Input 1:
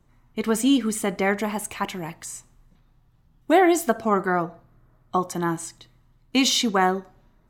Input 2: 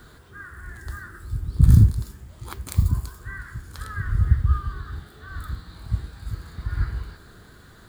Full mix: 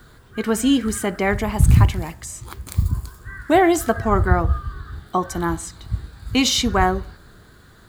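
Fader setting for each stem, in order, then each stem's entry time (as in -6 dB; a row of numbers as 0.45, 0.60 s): +2.0, 0.0 dB; 0.00, 0.00 s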